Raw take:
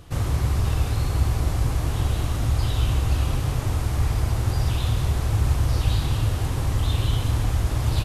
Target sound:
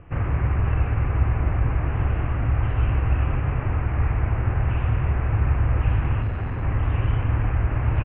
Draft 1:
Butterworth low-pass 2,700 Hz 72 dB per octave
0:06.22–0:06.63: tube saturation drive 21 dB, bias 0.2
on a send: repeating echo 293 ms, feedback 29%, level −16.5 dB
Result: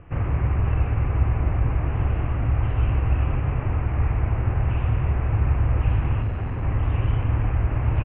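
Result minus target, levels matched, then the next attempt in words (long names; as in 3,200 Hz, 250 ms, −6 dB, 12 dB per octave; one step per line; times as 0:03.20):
2,000 Hz band −3.0 dB
Butterworth low-pass 2,700 Hz 72 dB per octave
dynamic equaliser 1,600 Hz, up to +4 dB, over −52 dBFS, Q 1.6
0:06.22–0:06.63: tube saturation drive 21 dB, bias 0.2
on a send: repeating echo 293 ms, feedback 29%, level −16.5 dB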